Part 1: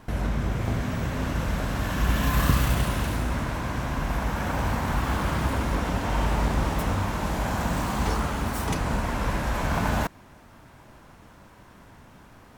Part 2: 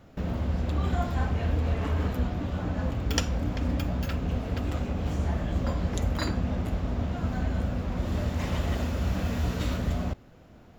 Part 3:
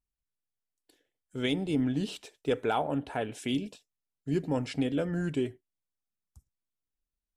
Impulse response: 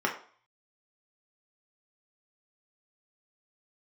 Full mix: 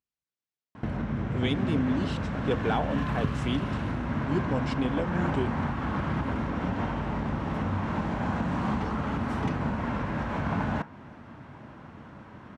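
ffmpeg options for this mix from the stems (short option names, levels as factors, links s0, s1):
-filter_complex "[0:a]bass=f=250:g=10,treble=f=4000:g=-10,acompressor=threshold=0.0631:ratio=3,adelay=750,volume=1.06,asplit=2[s0][s1];[s1]volume=0.119[s2];[2:a]volume=1[s3];[3:a]atrim=start_sample=2205[s4];[s2][s4]afir=irnorm=-1:irlink=0[s5];[s0][s3][s5]amix=inputs=3:normalize=0,highpass=120,lowpass=5900"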